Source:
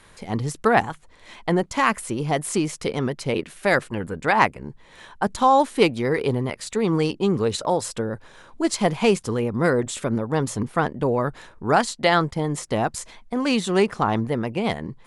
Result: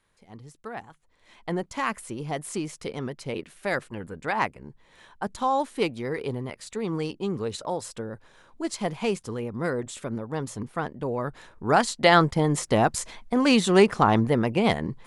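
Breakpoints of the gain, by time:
0.81 s -19.5 dB
1.52 s -8 dB
11.03 s -8 dB
12.2 s +2 dB

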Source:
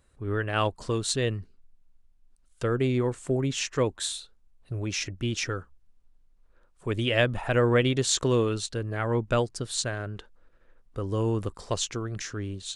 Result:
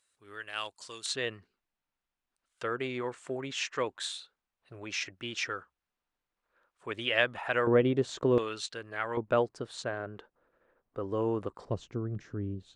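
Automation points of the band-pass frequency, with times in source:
band-pass, Q 0.59
6400 Hz
from 1.06 s 1700 Hz
from 7.67 s 430 Hz
from 8.38 s 2100 Hz
from 9.17 s 690 Hz
from 11.65 s 190 Hz

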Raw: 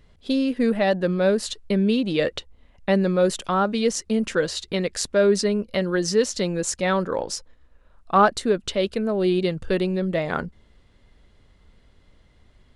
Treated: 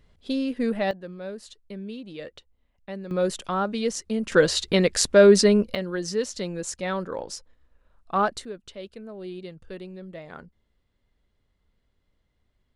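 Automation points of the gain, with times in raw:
-4.5 dB
from 0.91 s -16 dB
from 3.11 s -4.5 dB
from 4.32 s +4.5 dB
from 5.75 s -6.5 dB
from 8.45 s -16 dB

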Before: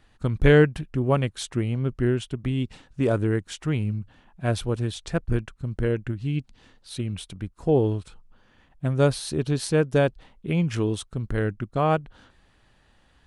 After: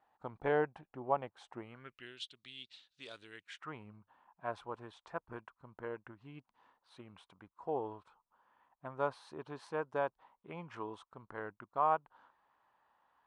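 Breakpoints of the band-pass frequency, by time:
band-pass, Q 3.9
1.58 s 840 Hz
2.13 s 3900 Hz
3.31 s 3900 Hz
3.72 s 980 Hz

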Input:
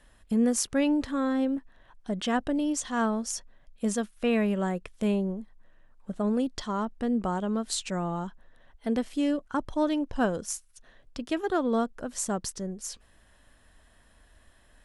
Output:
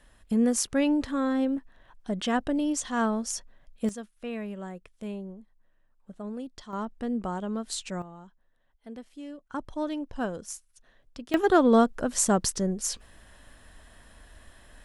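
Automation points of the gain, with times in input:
+0.5 dB
from 3.89 s -10 dB
from 6.73 s -3 dB
from 8.02 s -14.5 dB
from 9.5 s -5 dB
from 11.34 s +7 dB

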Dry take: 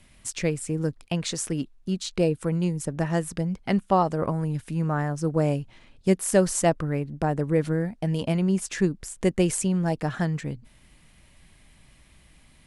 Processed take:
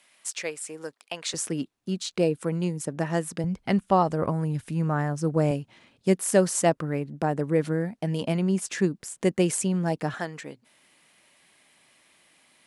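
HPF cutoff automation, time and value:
630 Hz
from 1.34 s 170 Hz
from 3.44 s 52 Hz
from 5.51 s 150 Hz
from 10.14 s 380 Hz

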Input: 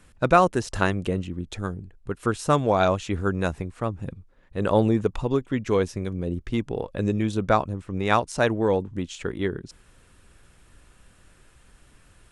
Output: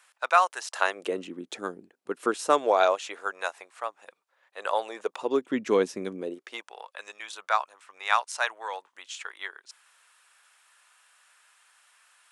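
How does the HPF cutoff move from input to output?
HPF 24 dB/oct
0.69 s 780 Hz
1.21 s 280 Hz
2.23 s 280 Hz
3.4 s 670 Hz
4.88 s 670 Hz
5.5 s 230 Hz
6.11 s 230 Hz
6.74 s 860 Hz

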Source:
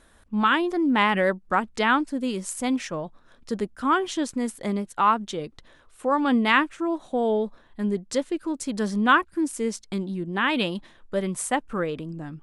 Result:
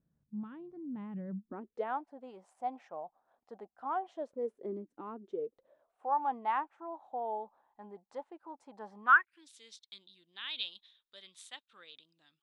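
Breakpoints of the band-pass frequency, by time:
band-pass, Q 7.4
1.27 s 150 Hz
1.97 s 760 Hz
4.06 s 760 Hz
4.92 s 280 Hz
6.11 s 830 Hz
8.97 s 830 Hz
9.44 s 3700 Hz

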